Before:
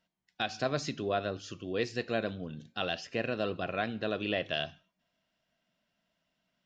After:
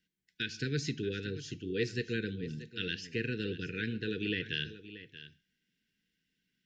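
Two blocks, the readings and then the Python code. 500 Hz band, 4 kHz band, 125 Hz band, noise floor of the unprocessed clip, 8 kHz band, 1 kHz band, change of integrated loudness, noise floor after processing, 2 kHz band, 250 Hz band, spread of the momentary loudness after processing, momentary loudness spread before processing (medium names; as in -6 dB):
-5.0 dB, -1.0 dB, +3.5 dB, -82 dBFS, no reading, -20.0 dB, -2.0 dB, -82 dBFS, -0.5 dB, +0.5 dB, 13 LU, 6 LU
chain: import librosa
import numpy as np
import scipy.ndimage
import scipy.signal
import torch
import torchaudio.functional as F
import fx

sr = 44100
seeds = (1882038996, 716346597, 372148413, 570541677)

p1 = scipy.signal.sosfilt(scipy.signal.cheby1(5, 1.0, [470.0, 1500.0], 'bandstop', fs=sr, output='sos'), x)
p2 = fx.dynamic_eq(p1, sr, hz=130.0, q=2.1, threshold_db=-54.0, ratio=4.0, max_db=6)
y = p2 + fx.echo_single(p2, sr, ms=631, db=-14.5, dry=0)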